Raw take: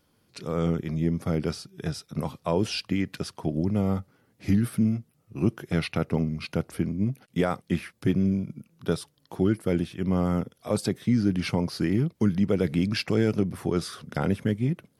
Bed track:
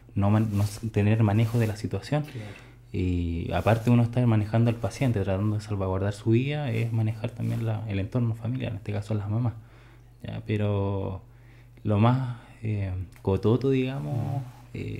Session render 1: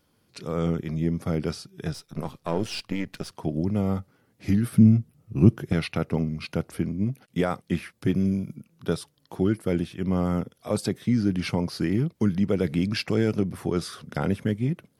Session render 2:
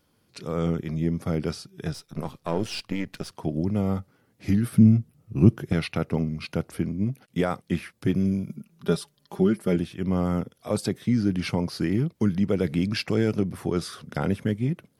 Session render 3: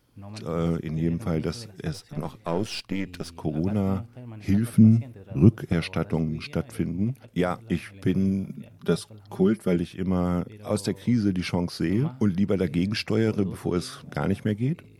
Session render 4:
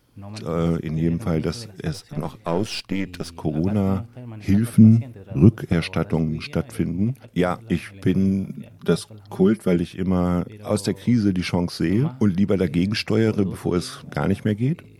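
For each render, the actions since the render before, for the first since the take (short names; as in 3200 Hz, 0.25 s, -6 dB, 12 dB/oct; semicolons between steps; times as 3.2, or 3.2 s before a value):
1.93–3.32 half-wave gain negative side -7 dB; 4.72–5.73 low shelf 270 Hz +12 dB; 8.14–8.56 high shelf 7100 Hz +12 dB
8.49–9.76 comb 5 ms, depth 67%
add bed track -18.5 dB
gain +4 dB; limiter -2 dBFS, peak gain reduction 1.5 dB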